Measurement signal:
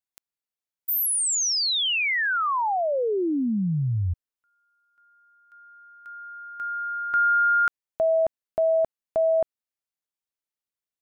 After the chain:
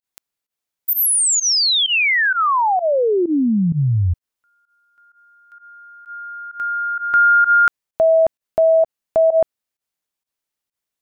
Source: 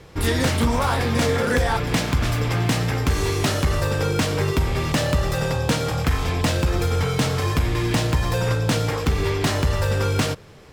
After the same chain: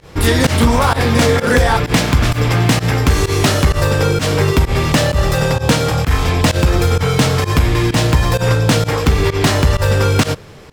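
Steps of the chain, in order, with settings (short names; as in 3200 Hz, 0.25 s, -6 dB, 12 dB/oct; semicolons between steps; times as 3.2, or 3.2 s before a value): pump 129 bpm, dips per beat 1, -21 dB, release 86 ms; gain +8 dB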